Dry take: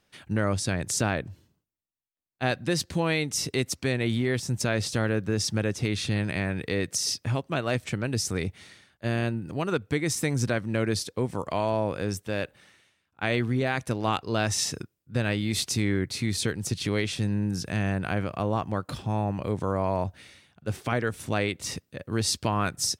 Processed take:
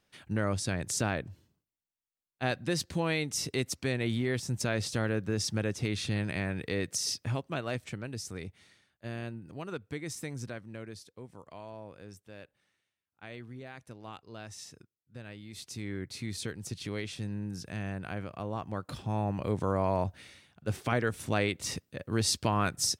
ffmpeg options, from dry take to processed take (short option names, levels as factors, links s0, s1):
-af "volume=4.22,afade=t=out:st=7.23:d=0.94:silence=0.446684,afade=t=out:st=10.15:d=0.83:silence=0.421697,afade=t=in:st=15.51:d=0.62:silence=0.334965,afade=t=in:st=18.5:d=1.04:silence=0.421697"